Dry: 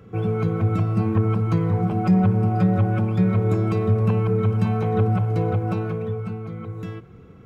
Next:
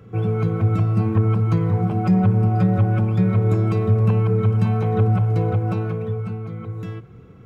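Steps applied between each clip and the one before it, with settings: bell 120 Hz +7 dB 0.25 oct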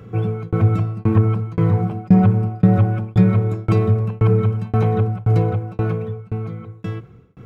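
tremolo saw down 1.9 Hz, depth 100%; gain +6 dB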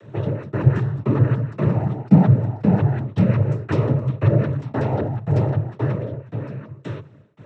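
noise vocoder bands 12; gain -1.5 dB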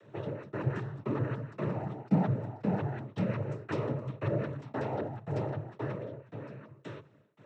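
HPF 300 Hz 6 dB/oct; gain -8.5 dB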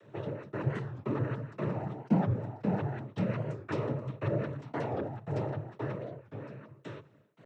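record warp 45 rpm, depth 160 cents

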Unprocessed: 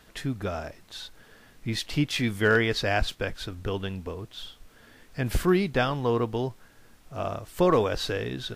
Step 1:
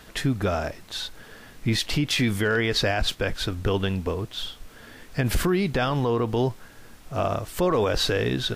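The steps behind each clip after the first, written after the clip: limiter -22 dBFS, peak gain reduction 11 dB; gain +8 dB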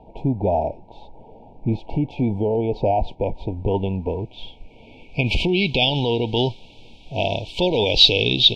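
FFT band-reject 970–2200 Hz; low-pass sweep 880 Hz -> 3400 Hz, 3.04–5.92; dynamic EQ 4200 Hz, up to +8 dB, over -43 dBFS, Q 0.72; gain +2 dB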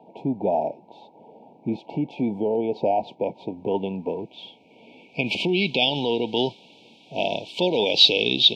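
HPF 170 Hz 24 dB/oct; gain -2 dB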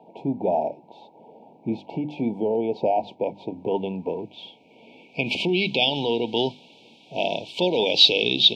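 notches 50/100/150/200/250/300 Hz

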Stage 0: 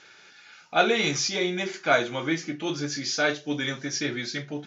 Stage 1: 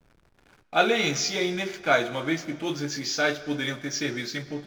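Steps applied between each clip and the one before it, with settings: backlash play -39.5 dBFS; digital reverb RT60 2 s, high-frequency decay 0.9×, pre-delay 75 ms, DRR 16 dB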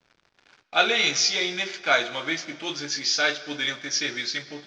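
LPF 5600 Hz 24 dB/oct; tilt +3.5 dB/oct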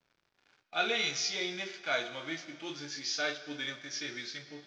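harmonic-percussive split percussive -9 dB; gain -6.5 dB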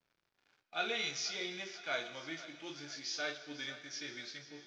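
thinning echo 0.495 s, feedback 59%, level -15.5 dB; gain -5.5 dB

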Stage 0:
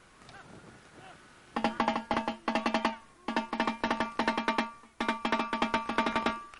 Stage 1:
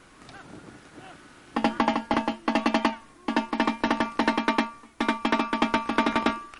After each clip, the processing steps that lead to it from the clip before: bell 290 Hz +8 dB 0.35 oct; gain +4.5 dB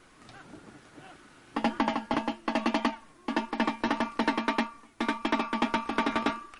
flange 1.7 Hz, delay 2.1 ms, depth 7.6 ms, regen +52%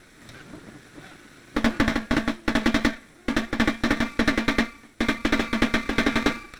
minimum comb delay 0.53 ms; gain +7 dB

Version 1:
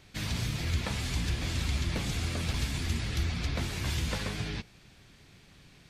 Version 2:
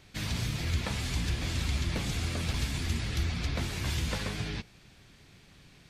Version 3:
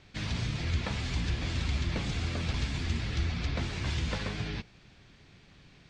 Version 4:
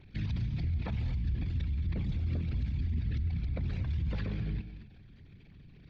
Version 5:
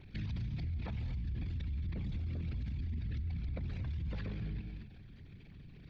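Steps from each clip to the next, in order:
nothing audible
Bessel low-pass 5100 Hz, order 6
formant sharpening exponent 2; limiter -29.5 dBFS, peak gain reduction 8 dB; non-linear reverb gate 0.26 s rising, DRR 11 dB; gain +3 dB
limiter -33.5 dBFS, peak gain reduction 9 dB; gain +1 dB

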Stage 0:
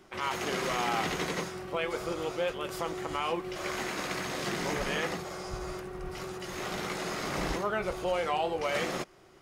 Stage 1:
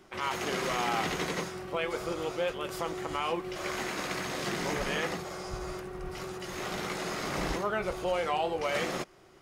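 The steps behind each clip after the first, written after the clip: nothing audible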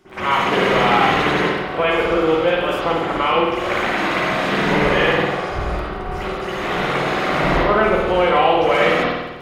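crackle 27/s -40 dBFS; reverb RT60 1.1 s, pre-delay 50 ms, DRR -16 dB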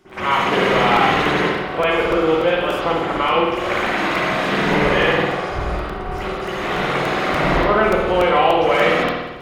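crackling interface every 0.29 s, samples 128, repeat, from 0.96

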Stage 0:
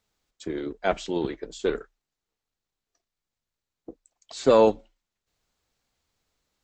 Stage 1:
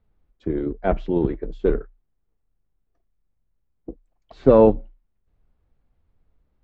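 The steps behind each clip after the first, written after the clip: LPF 2800 Hz 12 dB/oct; tilt -4 dB/oct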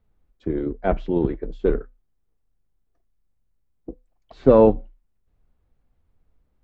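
resonator 250 Hz, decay 0.25 s, harmonics all, mix 30%; gain +2.5 dB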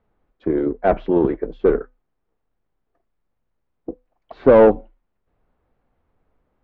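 overdrive pedal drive 19 dB, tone 1100 Hz, clips at -1 dBFS; air absorption 130 m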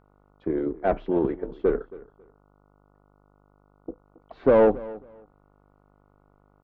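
buzz 50 Hz, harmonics 29, -55 dBFS -3 dB/oct; feedback echo 0.273 s, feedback 20%, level -19.5 dB; gain -6.5 dB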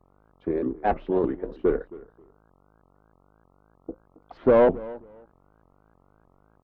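shaped vibrato saw up 3.2 Hz, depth 250 cents

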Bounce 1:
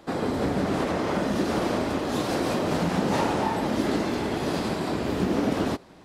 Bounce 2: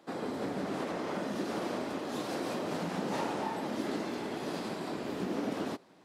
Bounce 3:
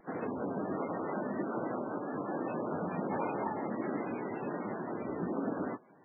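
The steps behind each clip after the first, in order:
HPF 170 Hz 12 dB/oct; gain -9 dB
vibrato 5.3 Hz 93 cents; MP3 8 kbps 16000 Hz

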